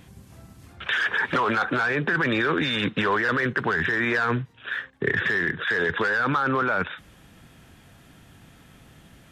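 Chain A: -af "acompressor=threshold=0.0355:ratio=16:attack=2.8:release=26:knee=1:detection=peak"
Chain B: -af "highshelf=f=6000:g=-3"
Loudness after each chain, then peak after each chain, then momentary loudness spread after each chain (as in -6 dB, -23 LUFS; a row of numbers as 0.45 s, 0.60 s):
-31.5 LUFS, -24.0 LUFS; -16.0 dBFS, -11.5 dBFS; 21 LU, 7 LU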